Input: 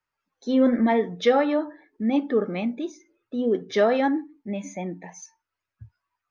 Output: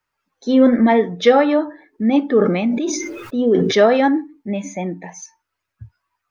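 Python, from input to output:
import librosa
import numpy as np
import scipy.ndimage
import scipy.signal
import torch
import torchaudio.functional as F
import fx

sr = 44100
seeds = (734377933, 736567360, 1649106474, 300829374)

y = fx.sustainer(x, sr, db_per_s=40.0, at=(2.37, 3.86))
y = y * 10.0 ** (7.0 / 20.0)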